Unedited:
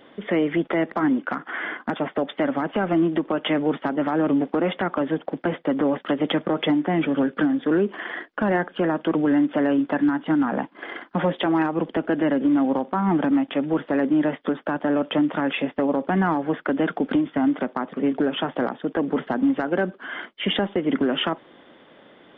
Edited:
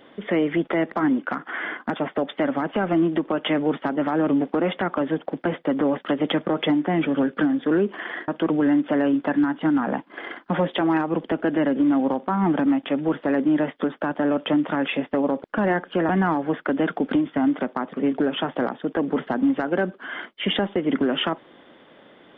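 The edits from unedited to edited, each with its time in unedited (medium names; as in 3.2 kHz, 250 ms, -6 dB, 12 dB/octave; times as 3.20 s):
8.28–8.93 s: move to 16.09 s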